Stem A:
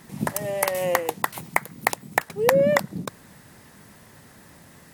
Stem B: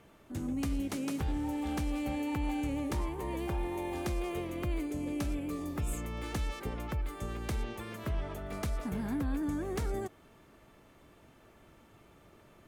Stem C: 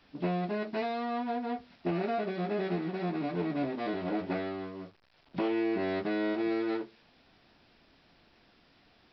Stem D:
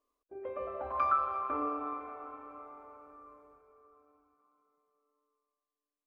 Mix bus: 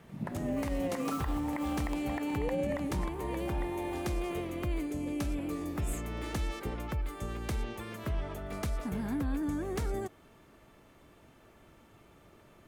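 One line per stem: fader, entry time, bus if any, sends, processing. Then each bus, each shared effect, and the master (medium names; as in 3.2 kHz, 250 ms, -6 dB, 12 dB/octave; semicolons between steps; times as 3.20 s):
-11.5 dB, 0.00 s, no send, echo send -14.5 dB, tone controls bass +5 dB, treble -15 dB
+0.5 dB, 0.00 s, no send, no echo send, none
-17.0 dB, 0.00 s, no send, no echo send, none
-11.0 dB, 0.00 s, no send, no echo send, modulation noise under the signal 13 dB; square tremolo 1.9 Hz, depth 60%, duty 65%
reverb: none
echo: delay 853 ms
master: peak limiter -24 dBFS, peak gain reduction 10.5 dB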